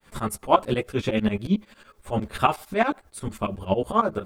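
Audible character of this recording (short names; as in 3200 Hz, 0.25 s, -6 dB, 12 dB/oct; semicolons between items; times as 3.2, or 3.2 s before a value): a quantiser's noise floor 12-bit, dither triangular; tremolo saw up 11 Hz, depth 100%; a shimmering, thickened sound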